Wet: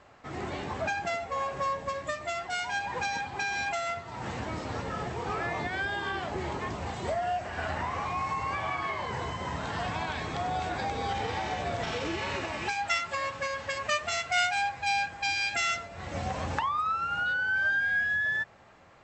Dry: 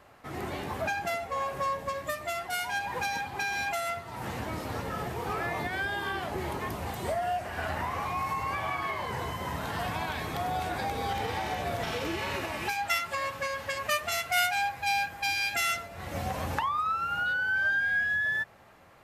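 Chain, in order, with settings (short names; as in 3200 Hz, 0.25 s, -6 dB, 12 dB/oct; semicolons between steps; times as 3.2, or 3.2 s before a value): brick-wall FIR low-pass 8100 Hz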